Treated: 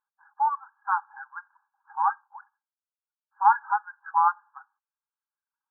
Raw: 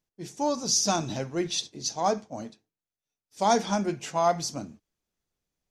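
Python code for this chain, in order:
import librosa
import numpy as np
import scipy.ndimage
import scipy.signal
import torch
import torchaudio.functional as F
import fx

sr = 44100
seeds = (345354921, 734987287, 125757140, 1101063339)

y = fx.dereverb_blind(x, sr, rt60_s=0.98)
y = fx.brickwall_bandpass(y, sr, low_hz=790.0, high_hz=1700.0)
y = y * 10.0 ** (8.5 / 20.0)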